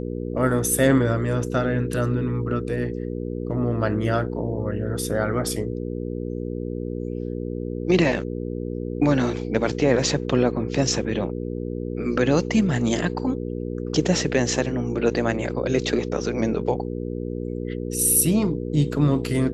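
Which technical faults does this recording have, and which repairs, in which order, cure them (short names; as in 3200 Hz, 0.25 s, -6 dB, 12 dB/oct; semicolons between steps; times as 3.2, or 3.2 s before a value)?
hum 60 Hz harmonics 8 -29 dBFS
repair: de-hum 60 Hz, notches 8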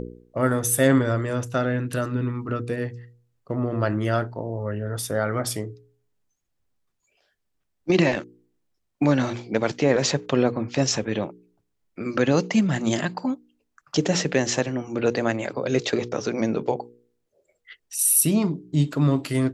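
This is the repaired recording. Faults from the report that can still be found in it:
none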